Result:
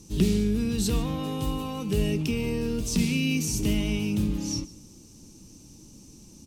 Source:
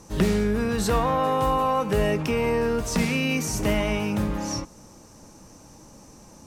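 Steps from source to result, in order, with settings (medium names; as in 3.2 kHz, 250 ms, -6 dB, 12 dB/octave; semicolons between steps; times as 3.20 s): high-order bell 1 kHz -16 dB 2.3 oct; on a send: delay 148 ms -19.5 dB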